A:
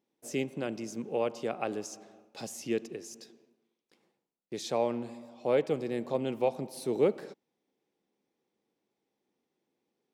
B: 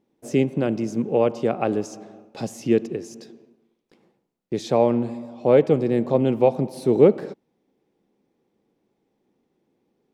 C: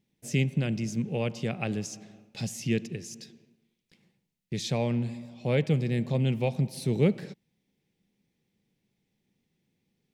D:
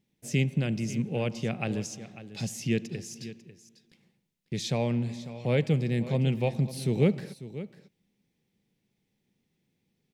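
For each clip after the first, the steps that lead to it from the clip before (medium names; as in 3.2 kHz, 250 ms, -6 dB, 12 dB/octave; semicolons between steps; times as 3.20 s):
tilt EQ -2.5 dB/octave; trim +8.5 dB
high-order bell 600 Hz -15 dB 2.8 oct; trim +2 dB
delay 546 ms -14.5 dB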